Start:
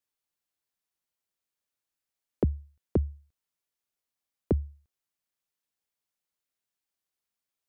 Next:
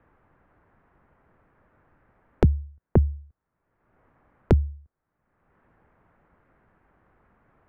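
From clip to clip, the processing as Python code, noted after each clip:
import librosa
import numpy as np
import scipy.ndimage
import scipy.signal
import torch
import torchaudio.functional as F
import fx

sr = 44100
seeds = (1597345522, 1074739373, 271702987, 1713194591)

y = scipy.signal.sosfilt(scipy.signal.butter(4, 1700.0, 'lowpass', fs=sr, output='sos'), x)
y = fx.low_shelf(y, sr, hz=210.0, db=10.0)
y = fx.band_squash(y, sr, depth_pct=100)
y = y * librosa.db_to_amplitude(3.5)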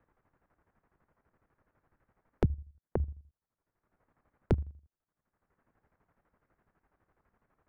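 y = fx.chopper(x, sr, hz=12.0, depth_pct=65, duty_pct=50)
y = y * librosa.db_to_amplitude(-8.5)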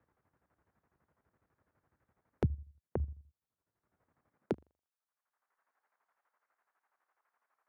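y = fx.filter_sweep_highpass(x, sr, from_hz=72.0, to_hz=920.0, start_s=4.18, end_s=4.86, q=1.1)
y = y * librosa.db_to_amplitude(-4.0)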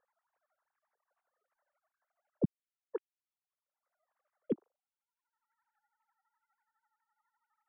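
y = fx.sine_speech(x, sr)
y = y * librosa.db_to_amplitude(-1.5)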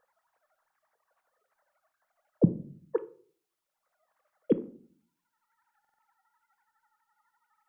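y = fx.room_shoebox(x, sr, seeds[0], volume_m3=430.0, walls='furnished', distance_m=0.59)
y = fx.buffer_glitch(y, sr, at_s=(5.8,), block=2048, repeats=3)
y = y * librosa.db_to_amplitude(8.5)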